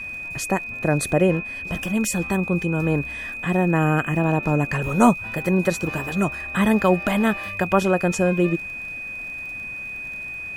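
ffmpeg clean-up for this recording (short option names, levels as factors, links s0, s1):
-af "adeclick=t=4,bandreject=f=2500:w=30"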